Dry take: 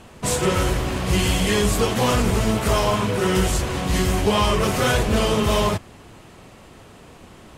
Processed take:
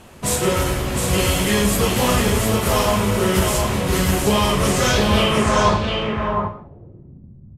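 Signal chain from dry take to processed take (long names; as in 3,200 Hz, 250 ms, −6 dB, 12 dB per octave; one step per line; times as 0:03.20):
low-pass filter sweep 13,000 Hz → 140 Hz, 0:04.53–0:06.70
single-tap delay 710 ms −4.5 dB
reverb whose tail is shaped and stops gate 240 ms falling, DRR 6 dB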